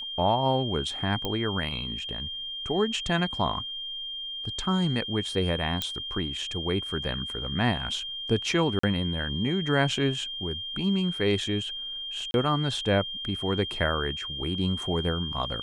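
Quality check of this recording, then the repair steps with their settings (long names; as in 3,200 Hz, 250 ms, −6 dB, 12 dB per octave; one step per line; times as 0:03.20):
whistle 3,200 Hz −33 dBFS
0:01.25: click −15 dBFS
0:05.82: click −13 dBFS
0:08.79–0:08.83: drop-out 44 ms
0:12.31–0:12.34: drop-out 31 ms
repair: click removal
notch filter 3,200 Hz, Q 30
repair the gap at 0:08.79, 44 ms
repair the gap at 0:12.31, 31 ms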